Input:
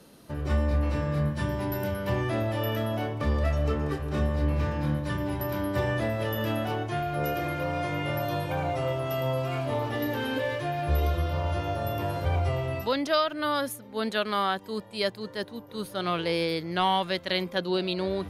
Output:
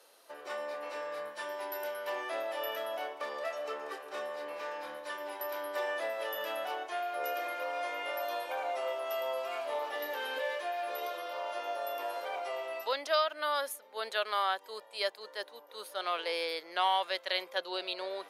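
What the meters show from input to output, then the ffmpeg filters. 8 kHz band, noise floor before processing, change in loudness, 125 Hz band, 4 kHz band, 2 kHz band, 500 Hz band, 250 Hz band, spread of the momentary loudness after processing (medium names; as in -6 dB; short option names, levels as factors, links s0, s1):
-3.5 dB, -46 dBFS, -7.0 dB, under -40 dB, -3.5 dB, -3.5 dB, -6.0 dB, -22.5 dB, 9 LU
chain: -af "highpass=f=510:w=0.5412,highpass=f=510:w=1.3066,volume=0.668"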